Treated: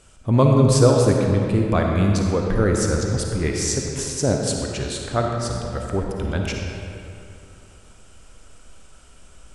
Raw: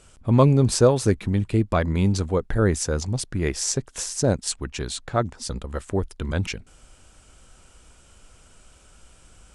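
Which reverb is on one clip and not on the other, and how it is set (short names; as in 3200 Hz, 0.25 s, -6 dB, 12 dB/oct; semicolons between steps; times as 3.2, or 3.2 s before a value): digital reverb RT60 2.7 s, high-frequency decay 0.65×, pre-delay 15 ms, DRR 0.5 dB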